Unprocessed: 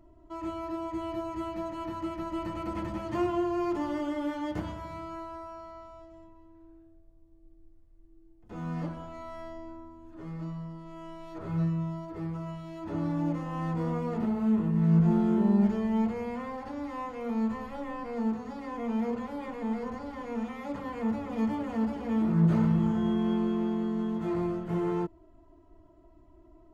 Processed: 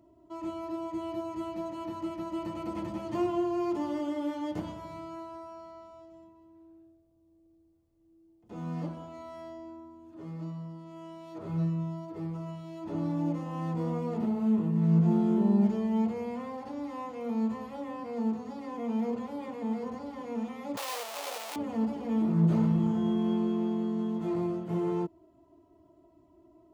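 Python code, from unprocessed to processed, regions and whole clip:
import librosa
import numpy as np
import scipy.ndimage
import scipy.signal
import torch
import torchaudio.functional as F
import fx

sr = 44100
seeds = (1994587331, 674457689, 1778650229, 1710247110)

y = fx.chain(x, sr, fx.clip_1bit(),
    fx.highpass(hz=550.0, slope=24), at=(20.77, 21.56))
y = scipy.signal.sosfilt(scipy.signal.butter(2, 120.0, 'highpass', fs=sr, output='sos'), y)
y = fx.peak_eq(y, sr, hz=1600.0, db=-7.5, octaves=1.0)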